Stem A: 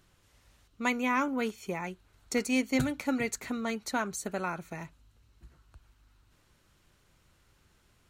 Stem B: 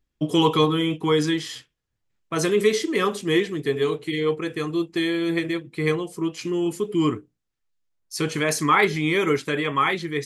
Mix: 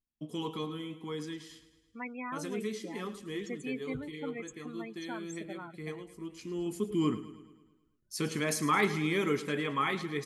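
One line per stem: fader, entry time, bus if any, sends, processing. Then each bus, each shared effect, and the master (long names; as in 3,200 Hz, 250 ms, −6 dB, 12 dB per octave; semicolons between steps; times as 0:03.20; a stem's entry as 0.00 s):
−10.5 dB, 1.15 s, no send, no echo send, spectral peaks only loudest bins 16; noise gate with hold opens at −59 dBFS
0:06.18 −19.5 dB → 0:06.83 −10 dB, 0.00 s, no send, echo send −14.5 dB, parametric band 220 Hz +10.5 dB 0.49 octaves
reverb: not used
echo: repeating echo 108 ms, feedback 55%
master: high-shelf EQ 6,800 Hz +5 dB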